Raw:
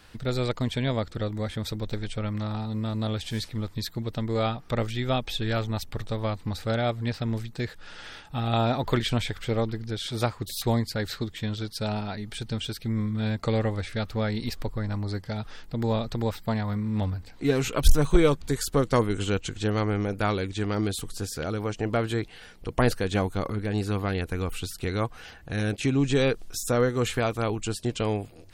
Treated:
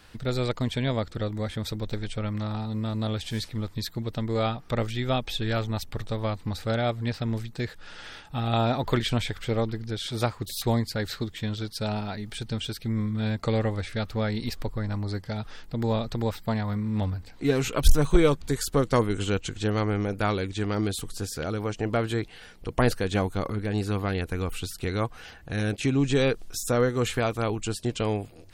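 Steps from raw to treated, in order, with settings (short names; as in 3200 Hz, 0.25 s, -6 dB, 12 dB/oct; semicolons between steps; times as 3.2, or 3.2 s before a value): 10.05–12.38 crackle 140/s -52 dBFS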